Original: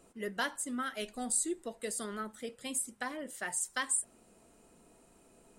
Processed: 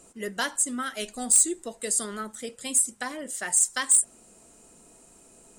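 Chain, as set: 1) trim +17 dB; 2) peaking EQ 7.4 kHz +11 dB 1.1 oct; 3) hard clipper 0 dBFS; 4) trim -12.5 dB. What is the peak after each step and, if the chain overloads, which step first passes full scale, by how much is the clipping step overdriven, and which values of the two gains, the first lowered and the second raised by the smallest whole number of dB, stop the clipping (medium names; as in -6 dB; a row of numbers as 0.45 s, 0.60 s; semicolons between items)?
-1.0 dBFS, +9.0 dBFS, 0.0 dBFS, -12.5 dBFS; step 2, 9.0 dB; step 1 +8 dB, step 4 -3.5 dB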